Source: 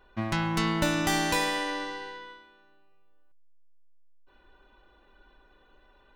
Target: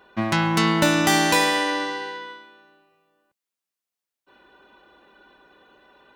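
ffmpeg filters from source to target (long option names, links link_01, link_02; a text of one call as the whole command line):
ffmpeg -i in.wav -af "highpass=140,volume=8dB" out.wav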